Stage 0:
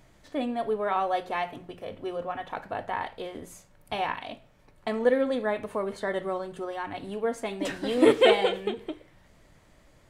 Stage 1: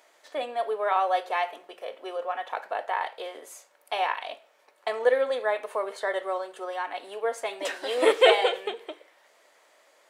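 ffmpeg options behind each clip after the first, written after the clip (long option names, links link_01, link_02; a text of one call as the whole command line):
ffmpeg -i in.wav -af "highpass=frequency=470:width=0.5412,highpass=frequency=470:width=1.3066,volume=3dB" out.wav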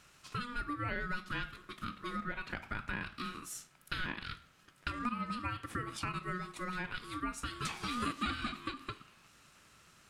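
ffmpeg -i in.wav -af "equalizer=frequency=7100:width_type=o:width=2.3:gain=5,acompressor=threshold=-33dB:ratio=4,aeval=exprs='val(0)*sin(2*PI*730*n/s)':channel_layout=same" out.wav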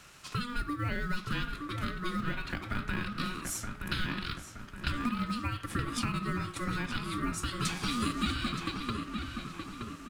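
ffmpeg -i in.wav -filter_complex "[0:a]acrossover=split=320|3000[link_01][link_02][link_03];[link_02]acompressor=threshold=-48dB:ratio=2.5[link_04];[link_01][link_04][link_03]amix=inputs=3:normalize=0,asplit=2[link_05][link_06];[link_06]acrusher=bits=4:mode=log:mix=0:aa=0.000001,volume=-9.5dB[link_07];[link_05][link_07]amix=inputs=2:normalize=0,asplit=2[link_08][link_09];[link_09]adelay=922,lowpass=frequency=2700:poles=1,volume=-5dB,asplit=2[link_10][link_11];[link_11]adelay=922,lowpass=frequency=2700:poles=1,volume=0.51,asplit=2[link_12][link_13];[link_13]adelay=922,lowpass=frequency=2700:poles=1,volume=0.51,asplit=2[link_14][link_15];[link_15]adelay=922,lowpass=frequency=2700:poles=1,volume=0.51,asplit=2[link_16][link_17];[link_17]adelay=922,lowpass=frequency=2700:poles=1,volume=0.51,asplit=2[link_18][link_19];[link_19]adelay=922,lowpass=frequency=2700:poles=1,volume=0.51[link_20];[link_08][link_10][link_12][link_14][link_16][link_18][link_20]amix=inputs=7:normalize=0,volume=5dB" out.wav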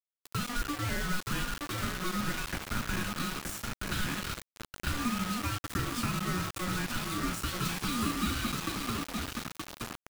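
ffmpeg -i in.wav -filter_complex "[0:a]asplit=2[link_01][link_02];[link_02]adelay=39,volume=-12dB[link_03];[link_01][link_03]amix=inputs=2:normalize=0,acrossover=split=450|1800[link_04][link_05][link_06];[link_06]asoftclip=type=tanh:threshold=-36dB[link_07];[link_04][link_05][link_07]amix=inputs=3:normalize=0,acrusher=bits=5:mix=0:aa=0.000001" out.wav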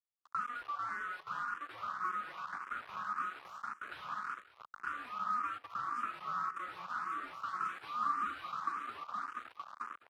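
ffmpeg -i in.wav -filter_complex "[0:a]bandpass=frequency=1200:width_type=q:width=4.9:csg=0,aecho=1:1:205:0.224,asplit=2[link_01][link_02];[link_02]afreqshift=1.8[link_03];[link_01][link_03]amix=inputs=2:normalize=1,volume=6.5dB" out.wav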